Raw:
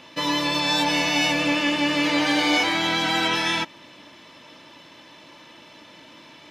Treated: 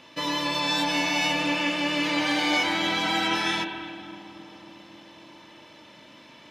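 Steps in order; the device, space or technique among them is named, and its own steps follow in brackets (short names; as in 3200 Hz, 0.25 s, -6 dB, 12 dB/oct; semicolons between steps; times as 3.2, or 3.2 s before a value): dub delay into a spring reverb (darkening echo 0.27 s, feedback 78%, low-pass 1300 Hz, level -14.5 dB; spring tank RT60 2.1 s, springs 39/52 ms, chirp 70 ms, DRR 5.5 dB); gain -4 dB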